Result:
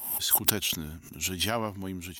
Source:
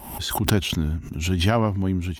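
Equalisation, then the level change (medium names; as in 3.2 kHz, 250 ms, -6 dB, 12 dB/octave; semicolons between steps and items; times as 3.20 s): RIAA curve recording; bass shelf 350 Hz +4.5 dB; -7.5 dB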